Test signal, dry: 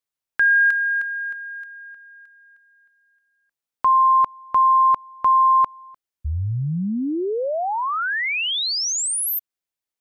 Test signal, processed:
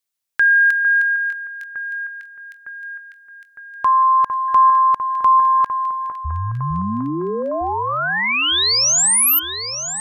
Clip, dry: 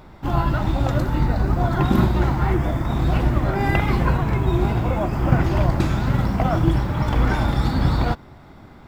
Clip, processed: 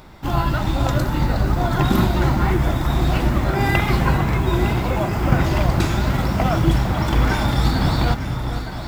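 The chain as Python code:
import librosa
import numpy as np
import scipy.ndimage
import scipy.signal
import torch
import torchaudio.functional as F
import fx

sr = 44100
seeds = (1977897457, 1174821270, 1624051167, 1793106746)

p1 = fx.high_shelf(x, sr, hz=2500.0, db=9.0)
y = p1 + fx.echo_alternate(p1, sr, ms=454, hz=1800.0, feedback_pct=78, wet_db=-8.0, dry=0)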